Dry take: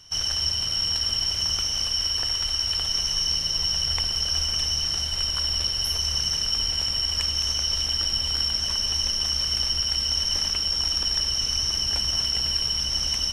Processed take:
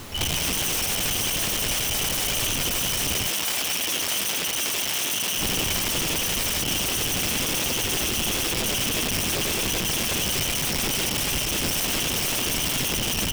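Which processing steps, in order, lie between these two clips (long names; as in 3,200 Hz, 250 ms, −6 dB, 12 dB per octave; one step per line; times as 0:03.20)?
downsampling to 11,025 Hz
spectral peaks only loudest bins 8
delay with a low-pass on its return 114 ms, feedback 44%, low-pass 620 Hz, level −12 dB
bit-depth reduction 6 bits, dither none
parametric band 1,400 Hz −13.5 dB 0.22 octaves
convolution reverb RT60 0.35 s, pre-delay 3 ms, DRR 2.5 dB
automatic gain control gain up to 9 dB
high-frequency loss of the air 190 metres
downward compressor 10 to 1, threshold −22 dBFS, peak gain reduction 9 dB
wrap-around overflow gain 29 dB
background noise pink −47 dBFS
0:03.30–0:05.38: high-pass filter 490 Hz 6 dB per octave
level +8.5 dB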